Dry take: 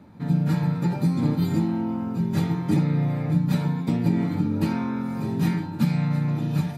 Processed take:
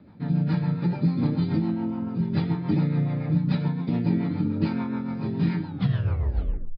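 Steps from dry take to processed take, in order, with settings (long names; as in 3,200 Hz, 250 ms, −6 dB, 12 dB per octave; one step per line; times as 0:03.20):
turntable brake at the end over 1.11 s
rotating-speaker cabinet horn 7 Hz
downsampling to 11,025 Hz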